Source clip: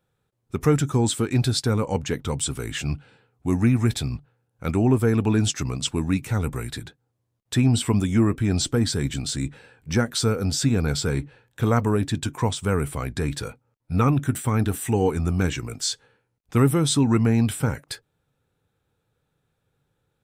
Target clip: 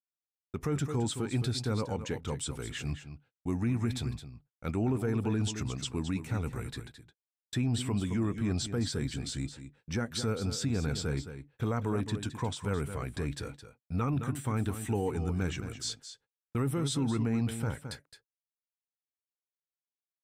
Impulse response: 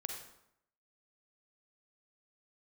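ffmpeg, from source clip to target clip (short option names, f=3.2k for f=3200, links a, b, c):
-filter_complex "[0:a]agate=range=-44dB:threshold=-39dB:ratio=16:detection=peak,asplit=2[a][b];[b]aecho=0:1:216:0.282[c];[a][c]amix=inputs=2:normalize=0,alimiter=limit=-14dB:level=0:latency=1:release=23,highshelf=f=8.8k:g=-6.5,volume=-8.5dB"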